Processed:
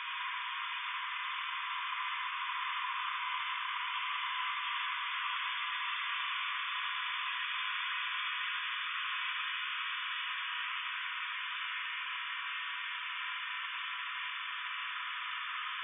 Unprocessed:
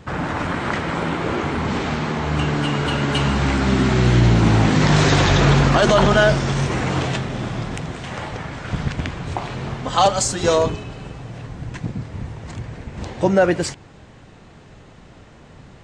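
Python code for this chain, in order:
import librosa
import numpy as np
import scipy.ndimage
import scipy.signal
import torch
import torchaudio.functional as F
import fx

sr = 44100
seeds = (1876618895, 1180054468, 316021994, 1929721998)

p1 = fx.tilt_eq(x, sr, slope=4.0)
p2 = fx.paulstretch(p1, sr, seeds[0], factor=46.0, window_s=0.25, from_s=9.32)
p3 = p2 + fx.echo_single(p2, sr, ms=76, db=-5.0, dry=0)
p4 = np.clip(p3, -10.0 ** (-21.0 / 20.0), 10.0 ** (-21.0 / 20.0))
p5 = fx.brickwall_bandpass(p4, sr, low_hz=960.0, high_hz=3600.0)
y = p5 * 10.0 ** (-5.5 / 20.0)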